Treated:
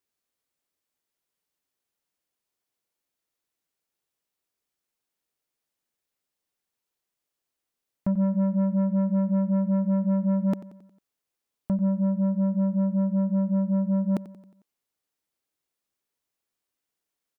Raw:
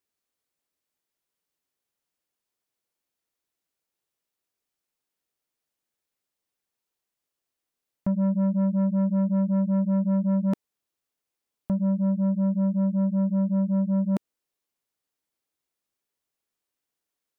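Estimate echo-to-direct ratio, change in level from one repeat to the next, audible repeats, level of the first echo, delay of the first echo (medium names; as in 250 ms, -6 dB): -15.5 dB, -5.5 dB, 4, -17.0 dB, 90 ms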